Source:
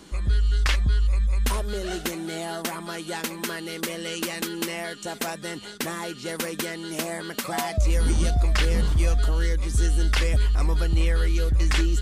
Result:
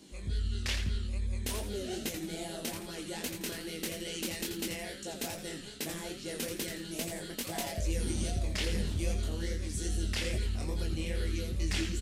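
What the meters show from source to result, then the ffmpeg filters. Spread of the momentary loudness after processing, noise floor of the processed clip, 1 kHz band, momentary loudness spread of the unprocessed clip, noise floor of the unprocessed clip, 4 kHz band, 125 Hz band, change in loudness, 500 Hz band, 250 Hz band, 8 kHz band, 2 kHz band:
5 LU, −44 dBFS, −13.0 dB, 8 LU, −40 dBFS, −6.0 dB, −11.0 dB, −10.0 dB, −8.0 dB, −6.5 dB, −5.0 dB, −10.0 dB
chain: -filter_complex "[0:a]highpass=frequency=150:poles=1,equalizer=frequency=1200:width_type=o:width=1.1:gain=-13.5,flanger=delay=18.5:depth=7.2:speed=2.4,asplit=5[link_01][link_02][link_03][link_04][link_05];[link_02]adelay=84,afreqshift=-140,volume=-7.5dB[link_06];[link_03]adelay=168,afreqshift=-280,volume=-16.9dB[link_07];[link_04]adelay=252,afreqshift=-420,volume=-26.2dB[link_08];[link_05]adelay=336,afreqshift=-560,volume=-35.6dB[link_09];[link_01][link_06][link_07][link_08][link_09]amix=inputs=5:normalize=0,volume=-2.5dB"

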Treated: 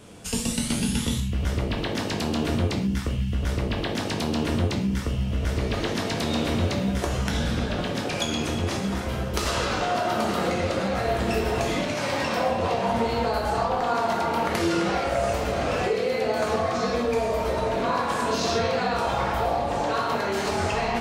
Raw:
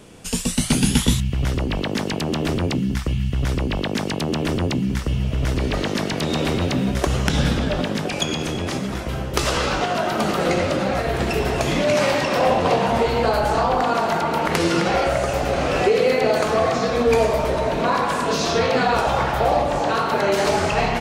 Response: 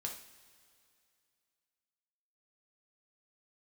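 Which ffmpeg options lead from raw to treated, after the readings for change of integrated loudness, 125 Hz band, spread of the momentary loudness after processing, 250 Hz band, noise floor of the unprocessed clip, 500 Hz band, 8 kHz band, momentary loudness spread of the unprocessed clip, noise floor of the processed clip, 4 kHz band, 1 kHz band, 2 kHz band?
−5.0 dB, −4.5 dB, 3 LU, −4.0 dB, −26 dBFS, −5.5 dB, −5.0 dB, 6 LU, −29 dBFS, −4.5 dB, −4.5 dB, −5.0 dB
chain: -filter_complex "[0:a]acompressor=threshold=-20dB:ratio=6[link_01];[1:a]atrim=start_sample=2205,atrim=end_sample=6615[link_02];[link_01][link_02]afir=irnorm=-1:irlink=0"

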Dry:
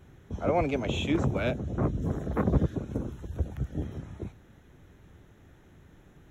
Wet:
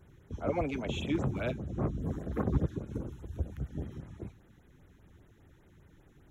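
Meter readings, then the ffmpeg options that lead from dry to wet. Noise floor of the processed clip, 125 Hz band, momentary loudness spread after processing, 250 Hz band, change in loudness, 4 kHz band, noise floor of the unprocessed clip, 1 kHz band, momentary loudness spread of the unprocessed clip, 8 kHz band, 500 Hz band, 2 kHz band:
−61 dBFS, −4.5 dB, 13 LU, −4.5 dB, −5.0 dB, −5.5 dB, −57 dBFS, −6.5 dB, 13 LU, can't be measured, −5.5 dB, −5.5 dB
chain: -af "flanger=delay=1.9:depth=4.2:regen=-80:speed=0.35:shape=sinusoidal,afftfilt=real='re*(1-between(b*sr/1024,520*pow(6000/520,0.5+0.5*sin(2*PI*5*pts/sr))/1.41,520*pow(6000/520,0.5+0.5*sin(2*PI*5*pts/sr))*1.41))':imag='im*(1-between(b*sr/1024,520*pow(6000/520,0.5+0.5*sin(2*PI*5*pts/sr))/1.41,520*pow(6000/520,0.5+0.5*sin(2*PI*5*pts/sr))*1.41))':win_size=1024:overlap=0.75"

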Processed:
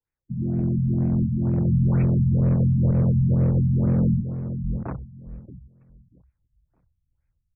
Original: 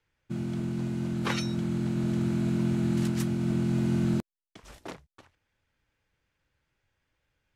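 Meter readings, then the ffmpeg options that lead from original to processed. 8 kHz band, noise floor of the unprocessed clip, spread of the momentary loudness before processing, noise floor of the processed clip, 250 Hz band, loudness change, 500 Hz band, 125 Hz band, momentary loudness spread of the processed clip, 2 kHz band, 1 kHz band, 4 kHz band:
below −35 dB, below −85 dBFS, 11 LU, −77 dBFS, +4.5 dB, +7.0 dB, +3.5 dB, +11.0 dB, 14 LU, can't be measured, −1.5 dB, below −40 dB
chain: -filter_complex "[0:a]lowpass=6100,afwtdn=0.01,asubboost=boost=9:cutoff=130,dynaudnorm=framelen=150:gausssize=5:maxgain=5.5dB,alimiter=limit=-12.5dB:level=0:latency=1:release=347,asoftclip=type=hard:threshold=-18dB,asplit=2[link_01][link_02];[link_02]adelay=627,lowpass=frequency=3600:poles=1,volume=-9.5dB,asplit=2[link_03][link_04];[link_04]adelay=627,lowpass=frequency=3600:poles=1,volume=0.2,asplit=2[link_05][link_06];[link_06]adelay=627,lowpass=frequency=3600:poles=1,volume=0.2[link_07];[link_01][link_03][link_05][link_07]amix=inputs=4:normalize=0,afftfilt=real='re*lt(b*sr/1024,210*pow(2700/210,0.5+0.5*sin(2*PI*2.1*pts/sr)))':imag='im*lt(b*sr/1024,210*pow(2700/210,0.5+0.5*sin(2*PI*2.1*pts/sr)))':win_size=1024:overlap=0.75,volume=2.5dB"

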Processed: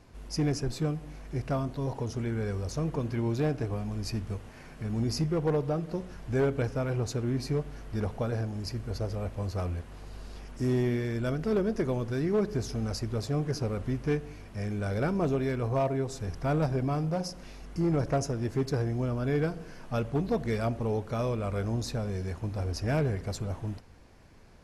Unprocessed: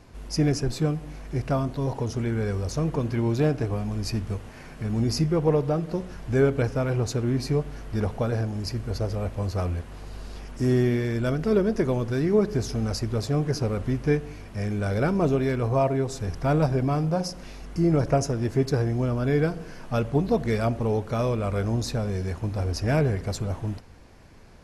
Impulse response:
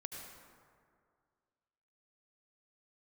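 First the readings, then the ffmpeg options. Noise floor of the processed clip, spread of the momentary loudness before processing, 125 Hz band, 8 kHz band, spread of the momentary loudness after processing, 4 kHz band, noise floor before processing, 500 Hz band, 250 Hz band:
−48 dBFS, 9 LU, −5.0 dB, −5.0 dB, 9 LU, −5.0 dB, −43 dBFS, −5.5 dB, −5.0 dB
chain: -af "asoftclip=type=hard:threshold=-16dB,volume=-5dB"

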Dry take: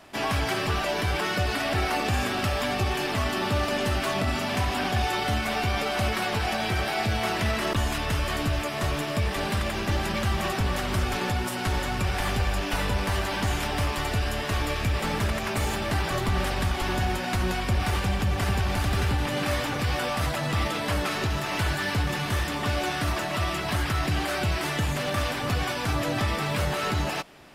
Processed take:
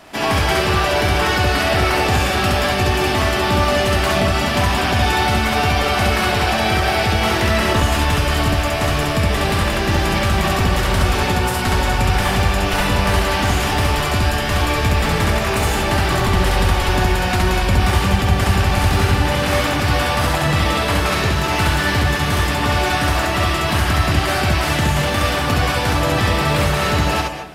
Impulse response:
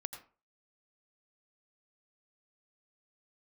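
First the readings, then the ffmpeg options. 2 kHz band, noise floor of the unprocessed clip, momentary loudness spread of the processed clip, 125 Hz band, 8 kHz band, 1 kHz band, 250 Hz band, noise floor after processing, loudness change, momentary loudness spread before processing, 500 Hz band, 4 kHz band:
+10.0 dB, −30 dBFS, 2 LU, +9.5 dB, +9.5 dB, +10.5 dB, +9.0 dB, −20 dBFS, +10.0 dB, 2 LU, +10.0 dB, +10.0 dB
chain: -filter_complex "[0:a]asplit=2[link_01][link_02];[1:a]atrim=start_sample=2205,asetrate=27783,aresample=44100,adelay=67[link_03];[link_02][link_03]afir=irnorm=-1:irlink=0,volume=-1dB[link_04];[link_01][link_04]amix=inputs=2:normalize=0,volume=7dB"

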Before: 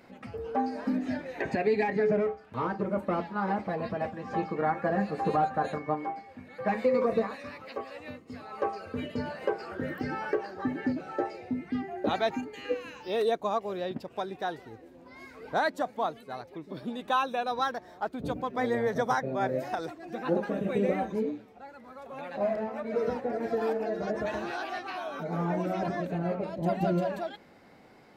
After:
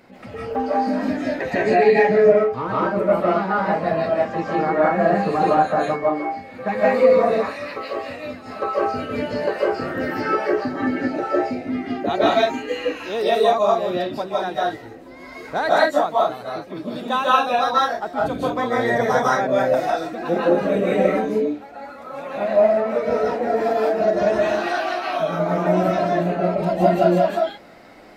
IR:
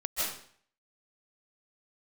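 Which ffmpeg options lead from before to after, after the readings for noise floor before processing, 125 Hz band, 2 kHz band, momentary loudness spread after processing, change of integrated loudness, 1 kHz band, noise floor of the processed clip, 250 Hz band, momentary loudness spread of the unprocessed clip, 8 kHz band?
−54 dBFS, +7.5 dB, +11.0 dB, 12 LU, +11.0 dB, +11.0 dB, −39 dBFS, +8.5 dB, 13 LU, can't be measured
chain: -filter_complex "[1:a]atrim=start_sample=2205,afade=type=out:start_time=0.27:duration=0.01,atrim=end_sample=12348[link_01];[0:a][link_01]afir=irnorm=-1:irlink=0,volume=5dB"

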